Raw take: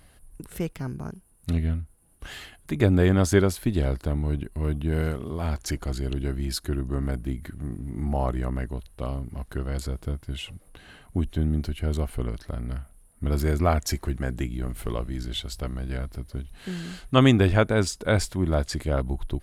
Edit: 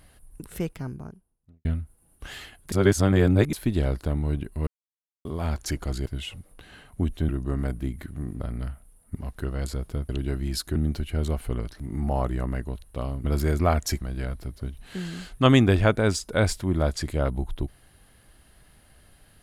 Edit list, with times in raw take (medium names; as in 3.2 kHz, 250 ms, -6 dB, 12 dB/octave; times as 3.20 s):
0.57–1.65 s: studio fade out
2.72–3.53 s: reverse
4.67–5.25 s: mute
6.06–6.73 s: swap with 10.22–11.45 s
7.84–9.28 s: swap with 12.49–13.24 s
14.01–15.73 s: delete